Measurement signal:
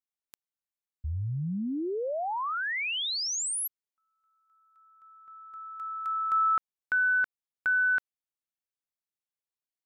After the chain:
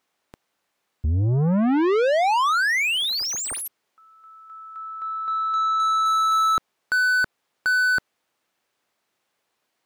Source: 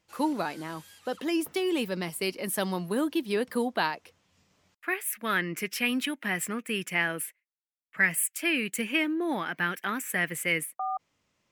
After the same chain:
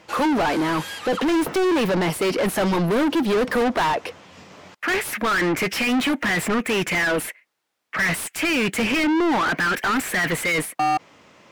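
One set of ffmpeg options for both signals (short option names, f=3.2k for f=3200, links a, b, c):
-filter_complex "[0:a]tiltshelf=f=760:g=4.5,asplit=2[a][b];[b]highpass=f=720:p=1,volume=36dB,asoftclip=type=tanh:threshold=-13dB[c];[a][c]amix=inputs=2:normalize=0,lowpass=f=2.5k:p=1,volume=-6dB"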